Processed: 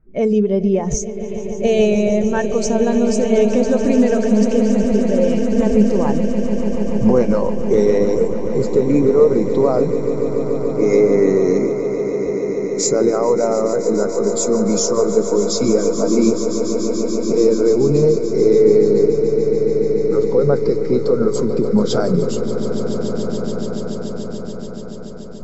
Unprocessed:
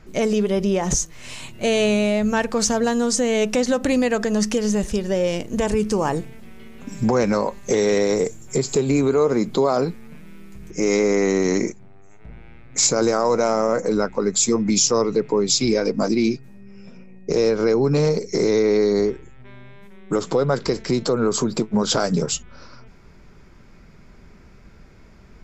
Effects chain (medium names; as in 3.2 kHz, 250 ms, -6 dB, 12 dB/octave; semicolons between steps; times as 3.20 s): level-controlled noise filter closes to 1.8 kHz, open at -14 dBFS; echo with a slow build-up 144 ms, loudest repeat 8, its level -11 dB; in parallel at -2 dB: gain riding within 3 dB 2 s; on the sum: spectral contrast expander 1.5:1; trim -3.5 dB